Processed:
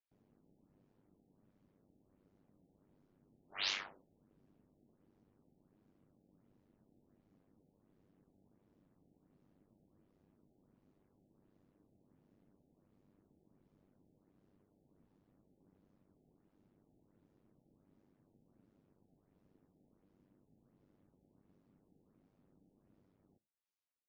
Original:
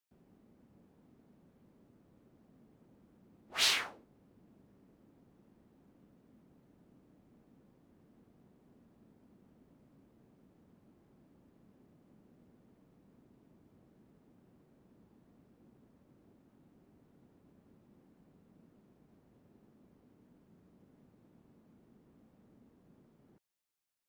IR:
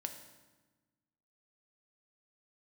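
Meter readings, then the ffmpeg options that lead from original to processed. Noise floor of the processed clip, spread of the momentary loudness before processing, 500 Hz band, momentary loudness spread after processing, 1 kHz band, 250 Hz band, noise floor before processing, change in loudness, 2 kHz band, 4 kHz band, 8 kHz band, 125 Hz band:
−77 dBFS, 15 LU, −8.0 dB, 15 LU, −7.5 dB, −8.0 dB, −69 dBFS, −7.0 dB, −7.5 dB, −8.0 dB, −14.0 dB, −7.0 dB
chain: -filter_complex "[0:a]aeval=exprs='val(0)*sin(2*PI*49*n/s)':channel_layout=same,asplit=2[link_01][link_02];[1:a]atrim=start_sample=2205,afade=type=out:start_time=0.41:duration=0.01,atrim=end_sample=18522,atrim=end_sample=4410[link_03];[link_02][link_03]afir=irnorm=-1:irlink=0,volume=-10dB[link_04];[link_01][link_04]amix=inputs=2:normalize=0,afftfilt=real='re*lt(b*sr/1024,840*pow(7400/840,0.5+0.5*sin(2*PI*1.4*pts/sr)))':imag='im*lt(b*sr/1024,840*pow(7400/840,0.5+0.5*sin(2*PI*1.4*pts/sr)))':win_size=1024:overlap=0.75,volume=-6.5dB"

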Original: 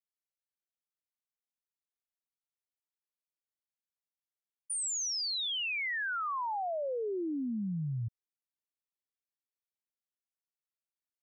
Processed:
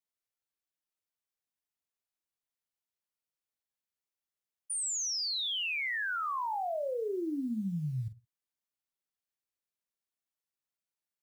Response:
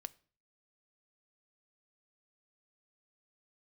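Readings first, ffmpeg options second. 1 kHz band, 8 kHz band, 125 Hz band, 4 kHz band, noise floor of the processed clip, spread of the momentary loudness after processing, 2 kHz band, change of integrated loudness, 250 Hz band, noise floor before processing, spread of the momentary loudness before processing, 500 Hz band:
+0.5 dB, +0.5 dB, 0.0 dB, +0.5 dB, below −85 dBFS, 6 LU, +0.5 dB, +0.5 dB, +0.5 dB, below −85 dBFS, 5 LU, +0.5 dB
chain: -filter_complex "[0:a]acrusher=bits=9:mode=log:mix=0:aa=0.000001,asplit=2[link_01][link_02];[1:a]atrim=start_sample=2205,afade=type=out:start_time=0.18:duration=0.01,atrim=end_sample=8379,adelay=46[link_03];[link_02][link_03]afir=irnorm=-1:irlink=0,volume=-5.5dB[link_04];[link_01][link_04]amix=inputs=2:normalize=0"

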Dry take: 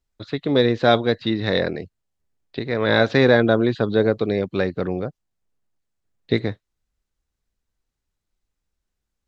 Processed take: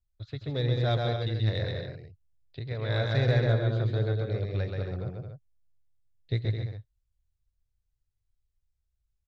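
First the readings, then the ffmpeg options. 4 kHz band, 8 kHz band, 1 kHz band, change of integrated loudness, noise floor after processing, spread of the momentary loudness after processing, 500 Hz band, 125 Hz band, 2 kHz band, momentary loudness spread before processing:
−10.0 dB, can't be measured, −13.0 dB, −9.0 dB, −79 dBFS, 17 LU, −13.0 dB, +1.0 dB, −13.5 dB, 15 LU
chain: -af "firequalizer=gain_entry='entry(120,0);entry(200,-21);entry(600,-14);entry(910,-18);entry(3300,-13)':delay=0.05:min_phase=1,aecho=1:1:131.2|212.8|274.1:0.708|0.447|0.355,aeval=exprs='0.237*(cos(1*acos(clip(val(0)/0.237,-1,1)))-cos(1*PI/2))+0.00841*(cos(6*acos(clip(val(0)/0.237,-1,1)))-cos(6*PI/2))+0.00422*(cos(8*acos(clip(val(0)/0.237,-1,1)))-cos(8*PI/2))':channel_layout=same"

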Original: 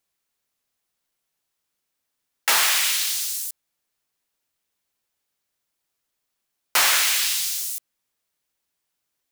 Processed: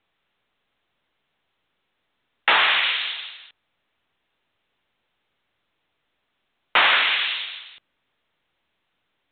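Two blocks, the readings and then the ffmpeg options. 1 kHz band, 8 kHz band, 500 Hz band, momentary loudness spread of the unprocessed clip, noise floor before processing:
+5.0 dB, below −40 dB, +5.0 dB, 12 LU, −80 dBFS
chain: -af "volume=5dB" -ar 8000 -c:a pcm_mulaw

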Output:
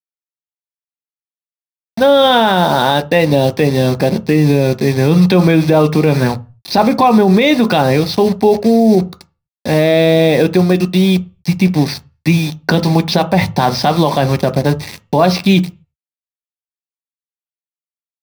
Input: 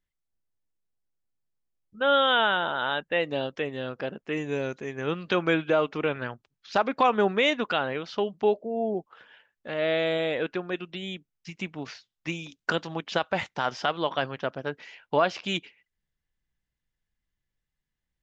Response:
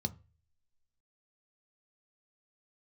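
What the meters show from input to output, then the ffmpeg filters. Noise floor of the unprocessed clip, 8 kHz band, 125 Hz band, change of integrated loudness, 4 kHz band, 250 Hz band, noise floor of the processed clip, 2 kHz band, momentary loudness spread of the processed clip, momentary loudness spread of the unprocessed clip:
−85 dBFS, can't be measured, +25.0 dB, +15.0 dB, +11.5 dB, +21.0 dB, below −85 dBFS, +8.5 dB, 7 LU, 13 LU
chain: -filter_complex "[0:a]acrusher=bits=6:mix=0:aa=0.000001[link_01];[1:a]atrim=start_sample=2205,afade=type=out:start_time=0.31:duration=0.01,atrim=end_sample=14112[link_02];[link_01][link_02]afir=irnorm=-1:irlink=0,alimiter=level_in=16.5dB:limit=-1dB:release=50:level=0:latency=1,volume=-1dB"

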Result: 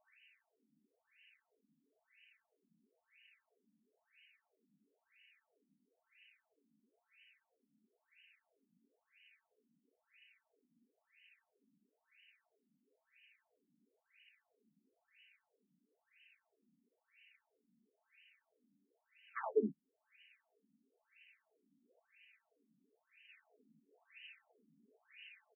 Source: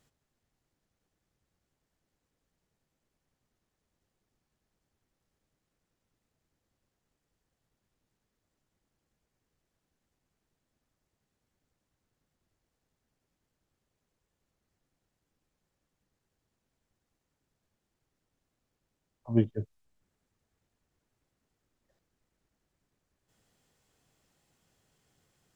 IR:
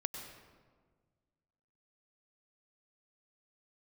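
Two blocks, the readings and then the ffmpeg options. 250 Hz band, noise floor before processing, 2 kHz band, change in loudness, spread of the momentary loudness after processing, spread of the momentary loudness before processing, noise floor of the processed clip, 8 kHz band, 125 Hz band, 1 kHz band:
−13.5 dB, −84 dBFS, +6.5 dB, −12.0 dB, 20 LU, 14 LU, below −85 dBFS, can't be measured, −24.5 dB, +8.5 dB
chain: -af "aeval=exprs='0.282*(cos(1*acos(clip(val(0)/0.282,-1,1)))-cos(1*PI/2))+0.1*(cos(2*acos(clip(val(0)/0.282,-1,1)))-cos(2*PI/2))':channel_layout=same,highshelf=frequency=1800:width_type=q:width=3:gain=14,aecho=1:1:4.5:0.92,aecho=1:1:60|74:0.501|0.562,aresample=16000,asoftclip=type=tanh:threshold=-26.5dB,aresample=44100,afftfilt=real='re*between(b*sr/1024,230*pow(2200/230,0.5+0.5*sin(2*PI*1*pts/sr))/1.41,230*pow(2200/230,0.5+0.5*sin(2*PI*1*pts/sr))*1.41)':imag='im*between(b*sr/1024,230*pow(2200/230,0.5+0.5*sin(2*PI*1*pts/sr))/1.41,230*pow(2200/230,0.5+0.5*sin(2*PI*1*pts/sr))*1.41)':win_size=1024:overlap=0.75,volume=6dB"

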